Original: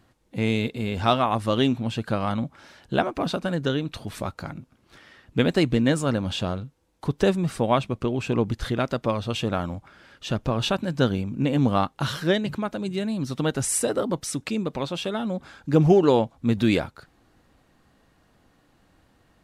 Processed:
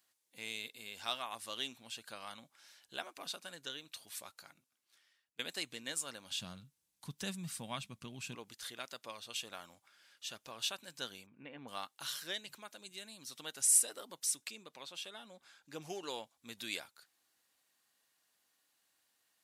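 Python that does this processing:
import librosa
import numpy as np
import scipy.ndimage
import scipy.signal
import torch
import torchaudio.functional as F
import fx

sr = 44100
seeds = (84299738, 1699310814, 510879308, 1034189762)

y = fx.low_shelf_res(x, sr, hz=270.0, db=13.5, q=1.5, at=(6.31, 8.35))
y = fx.lowpass(y, sr, hz=2300.0, slope=24, at=(11.25, 11.67), fade=0.02)
y = fx.high_shelf(y, sr, hz=4700.0, db=-6.5, at=(14.51, 15.82))
y = fx.edit(y, sr, fx.fade_out_to(start_s=4.24, length_s=1.15, floor_db=-20.5), tone=tone)
y = np.diff(y, prepend=0.0)
y = fx.notch(y, sr, hz=1300.0, q=24.0)
y = F.gain(torch.from_numpy(y), -2.5).numpy()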